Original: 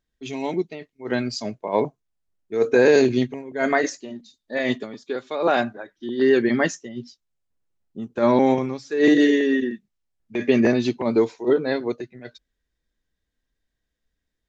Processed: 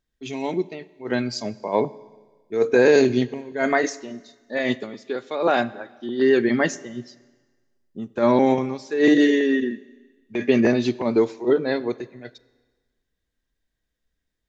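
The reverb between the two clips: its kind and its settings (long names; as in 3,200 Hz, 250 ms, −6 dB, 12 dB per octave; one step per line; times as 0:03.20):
four-comb reverb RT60 1.4 s, combs from 29 ms, DRR 19 dB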